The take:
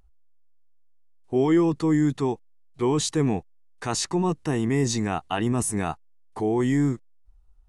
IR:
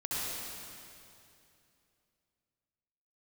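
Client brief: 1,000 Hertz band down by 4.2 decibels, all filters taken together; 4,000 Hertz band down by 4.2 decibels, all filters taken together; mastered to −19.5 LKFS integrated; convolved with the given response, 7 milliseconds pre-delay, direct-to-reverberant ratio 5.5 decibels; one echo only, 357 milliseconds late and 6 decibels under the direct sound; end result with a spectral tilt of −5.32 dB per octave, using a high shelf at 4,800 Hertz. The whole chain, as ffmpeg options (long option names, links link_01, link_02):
-filter_complex "[0:a]equalizer=frequency=1000:width_type=o:gain=-5.5,equalizer=frequency=4000:width_type=o:gain=-8.5,highshelf=frequency=4800:gain=5.5,aecho=1:1:357:0.501,asplit=2[link_01][link_02];[1:a]atrim=start_sample=2205,adelay=7[link_03];[link_02][link_03]afir=irnorm=-1:irlink=0,volume=-11.5dB[link_04];[link_01][link_04]amix=inputs=2:normalize=0,volume=4dB"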